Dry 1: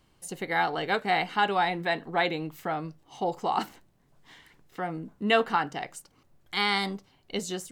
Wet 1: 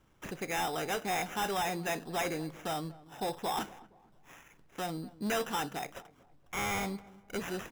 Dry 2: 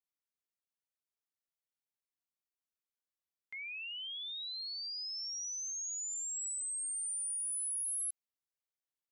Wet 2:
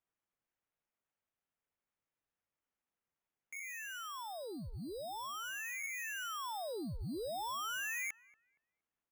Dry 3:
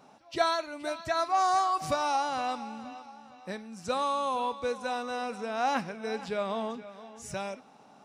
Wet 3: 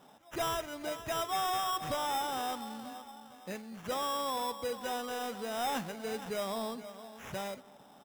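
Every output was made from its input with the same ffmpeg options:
ffmpeg -i in.wav -filter_complex "[0:a]acrusher=samples=10:mix=1:aa=0.000001,asoftclip=type=tanh:threshold=-26.5dB,asplit=2[link_01][link_02];[link_02]adelay=234,lowpass=frequency=1200:poles=1,volume=-19dB,asplit=2[link_03][link_04];[link_04]adelay=234,lowpass=frequency=1200:poles=1,volume=0.41,asplit=2[link_05][link_06];[link_06]adelay=234,lowpass=frequency=1200:poles=1,volume=0.41[link_07];[link_01][link_03][link_05][link_07]amix=inputs=4:normalize=0,volume=-2dB" out.wav

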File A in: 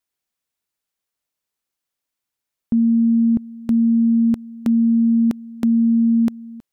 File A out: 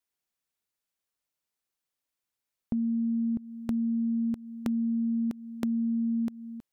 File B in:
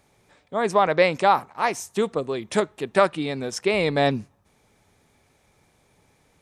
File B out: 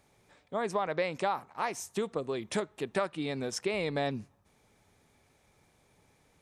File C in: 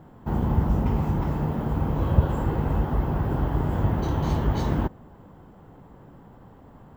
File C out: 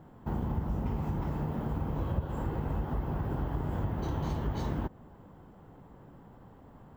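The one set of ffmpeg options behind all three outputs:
ffmpeg -i in.wav -af "acompressor=threshold=-25dB:ratio=3,volume=-4.5dB" out.wav

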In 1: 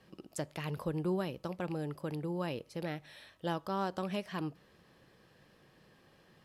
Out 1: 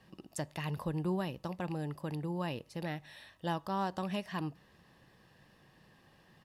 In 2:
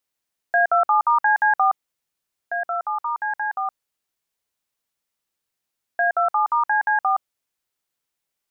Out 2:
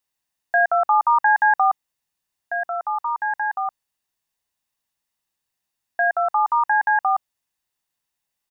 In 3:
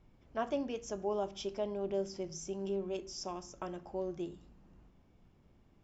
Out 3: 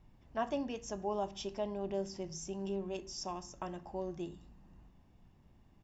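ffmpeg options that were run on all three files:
ffmpeg -i in.wav -af "aecho=1:1:1.1:0.34" out.wav

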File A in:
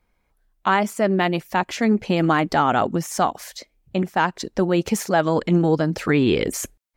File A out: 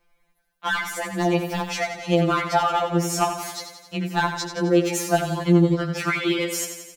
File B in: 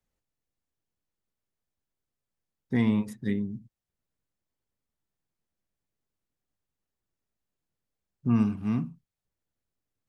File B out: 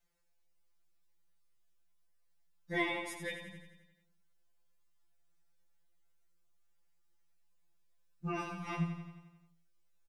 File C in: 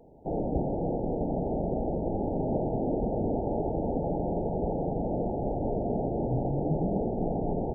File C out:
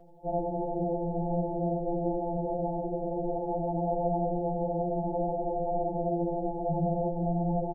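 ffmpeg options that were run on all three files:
ffmpeg -i in.wav -filter_complex "[0:a]equalizer=frequency=220:width=0.74:gain=-9,asplit=2[link_01][link_02];[link_02]acompressor=threshold=-30dB:ratio=6,volume=0dB[link_03];[link_01][link_03]amix=inputs=2:normalize=0,volume=12dB,asoftclip=hard,volume=-12dB,aecho=1:1:88|176|264|352|440|528|616|704:0.376|0.226|0.135|0.0812|0.0487|0.0292|0.0175|0.0105,afftfilt=real='re*2.83*eq(mod(b,8),0)':imag='im*2.83*eq(mod(b,8),0)':win_size=2048:overlap=0.75" out.wav

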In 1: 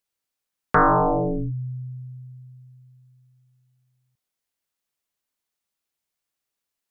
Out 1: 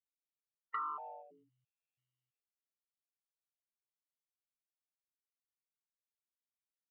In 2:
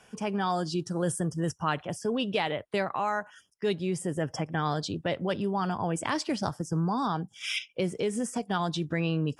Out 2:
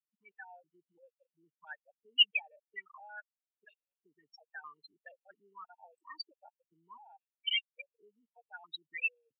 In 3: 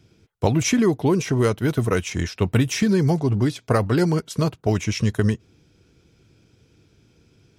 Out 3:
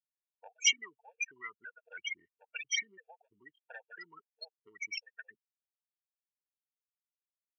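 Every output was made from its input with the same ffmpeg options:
ffmpeg -i in.wav -af "adynamicequalizer=threshold=0.00355:dfrequency=5700:dqfactor=2.8:tfrequency=5700:tqfactor=2.8:attack=5:release=100:ratio=0.375:range=2.5:mode=cutabove:tftype=bell,afftfilt=real='re*gte(hypot(re,im),0.1)':imag='im*gte(hypot(re,im),0.1)':win_size=1024:overlap=0.75,acompressor=threshold=-20dB:ratio=4,highpass=frequency=2800:width_type=q:width=7,afftfilt=real='re*gt(sin(2*PI*1.5*pts/sr)*(1-2*mod(floor(b*sr/1024/460),2)),0)':imag='im*gt(sin(2*PI*1.5*pts/sr)*(1-2*mod(floor(b*sr/1024/460),2)),0)':win_size=1024:overlap=0.75" out.wav

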